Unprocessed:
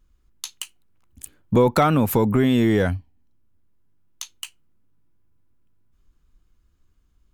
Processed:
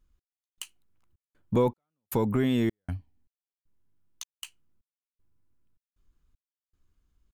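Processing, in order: trance gate "x..xxx.x" 78 bpm -60 dB; trim -7 dB

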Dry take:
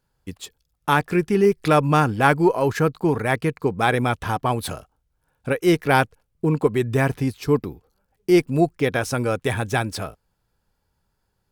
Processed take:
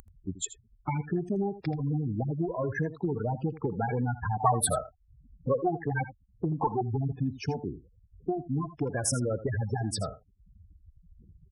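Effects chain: one-sided wavefolder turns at -19 dBFS; added noise brown -53 dBFS; spectral gate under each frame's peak -10 dB strong; compression 5:1, threshold -26 dBFS, peak gain reduction 12 dB; high-pass 55 Hz 12 dB/octave; resonant high shelf 6.4 kHz +11 dB, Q 1.5; delay 81 ms -14.5 dB; upward compressor, threshold -44 dBFS; 4.40–6.81 s: high-order bell 970 Hz +11.5 dB

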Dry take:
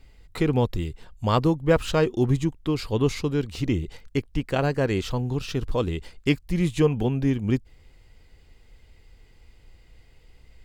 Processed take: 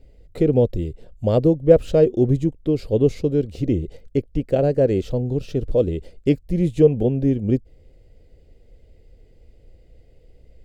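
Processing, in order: resonant low shelf 760 Hz +10 dB, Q 3; trim -7.5 dB

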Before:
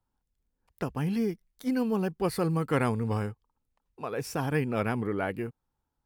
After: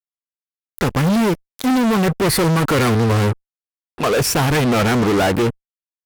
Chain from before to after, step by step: fuzz box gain 41 dB, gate -49 dBFS; Chebyshev shaper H 7 -23 dB, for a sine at -10 dBFS; trim -1.5 dB

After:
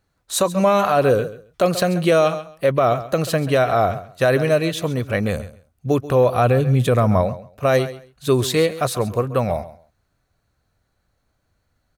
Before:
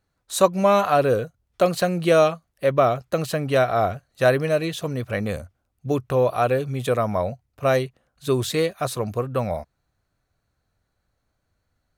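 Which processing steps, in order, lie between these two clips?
6.34–7.22 s: tone controls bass +8 dB, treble -1 dB; on a send: feedback delay 135 ms, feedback 18%, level -16 dB; on the sum: loudness maximiser +11 dB; trim -6.5 dB

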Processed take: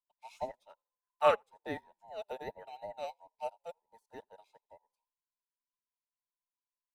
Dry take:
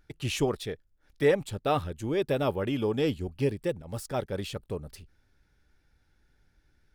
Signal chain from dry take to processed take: every band turned upside down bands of 1 kHz; 0.70–1.36 s: high-order bell 1.5 kHz +9 dB; frequency-shifting echo 84 ms, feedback 49%, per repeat -32 Hz, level -19.5 dB; upward expansion 2.5:1, over -44 dBFS; trim -3 dB

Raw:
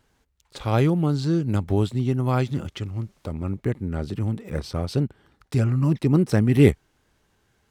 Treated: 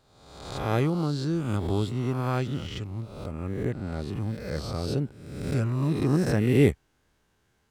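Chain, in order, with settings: reverse spectral sustain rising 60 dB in 1.00 s; trim -6 dB

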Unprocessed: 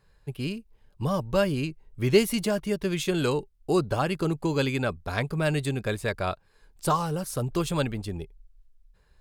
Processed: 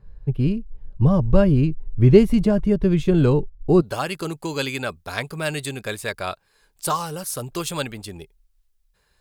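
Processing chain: tilt EQ -4 dB/octave, from 3.80 s +2 dB/octave; trim +1.5 dB

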